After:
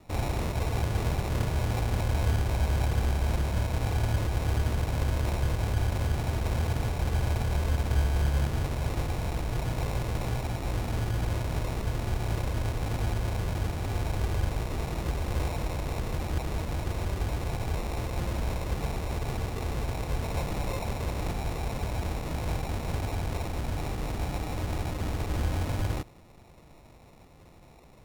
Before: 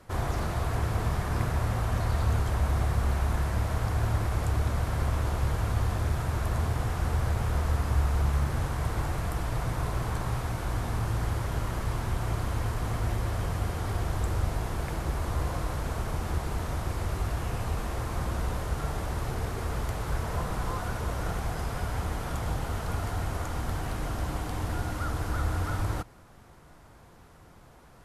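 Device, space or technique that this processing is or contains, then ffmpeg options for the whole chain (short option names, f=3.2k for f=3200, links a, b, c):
crushed at another speed: -af "asetrate=35280,aresample=44100,acrusher=samples=35:mix=1:aa=0.000001,asetrate=55125,aresample=44100"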